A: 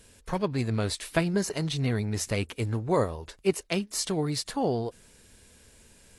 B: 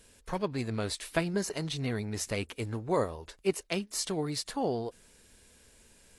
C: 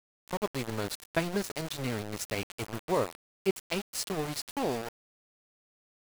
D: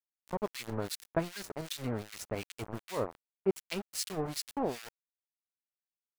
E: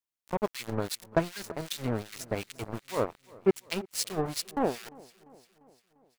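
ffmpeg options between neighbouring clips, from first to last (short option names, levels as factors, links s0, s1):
-af "equalizer=f=110:t=o:w=1.6:g=-4.5,volume=0.708"
-af "aeval=exprs='val(0)*gte(abs(val(0)),0.0251)':c=same"
-filter_complex "[0:a]acrossover=split=1500[s0][s1];[s0]aeval=exprs='val(0)*(1-1/2+1/2*cos(2*PI*2.6*n/s))':c=same[s2];[s1]aeval=exprs='val(0)*(1-1/2-1/2*cos(2*PI*2.6*n/s))':c=same[s3];[s2][s3]amix=inputs=2:normalize=0"
-af "aecho=1:1:347|694|1041|1388|1735:0.1|0.057|0.0325|0.0185|0.0106,aeval=exprs='0.133*(cos(1*acos(clip(val(0)/0.133,-1,1)))-cos(1*PI/2))+0.00668*(cos(7*acos(clip(val(0)/0.133,-1,1)))-cos(7*PI/2))':c=same,volume=1.88"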